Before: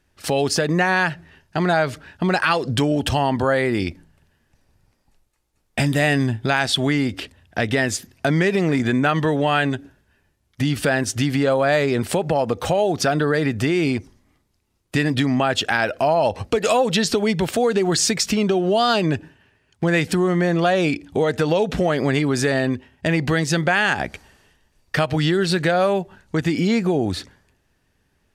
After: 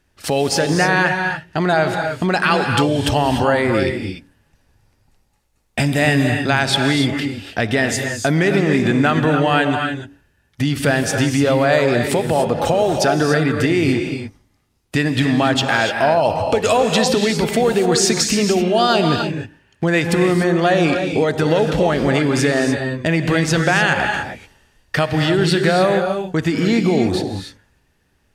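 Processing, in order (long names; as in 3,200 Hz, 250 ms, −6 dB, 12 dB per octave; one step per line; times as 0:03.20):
reverb whose tail is shaped and stops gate 320 ms rising, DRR 4 dB
level +2 dB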